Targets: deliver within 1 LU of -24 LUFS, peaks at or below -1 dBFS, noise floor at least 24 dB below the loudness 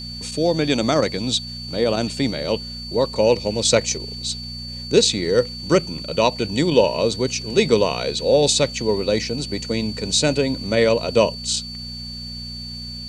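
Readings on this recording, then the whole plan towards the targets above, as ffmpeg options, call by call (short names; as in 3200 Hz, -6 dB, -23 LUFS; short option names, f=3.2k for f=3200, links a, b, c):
hum 60 Hz; harmonics up to 240 Hz; hum level -33 dBFS; steady tone 4500 Hz; tone level -32 dBFS; loudness -20.0 LUFS; peak -1.5 dBFS; loudness target -24.0 LUFS
-> -af "bandreject=f=60:t=h:w=4,bandreject=f=120:t=h:w=4,bandreject=f=180:t=h:w=4,bandreject=f=240:t=h:w=4"
-af "bandreject=f=4.5k:w=30"
-af "volume=-4dB"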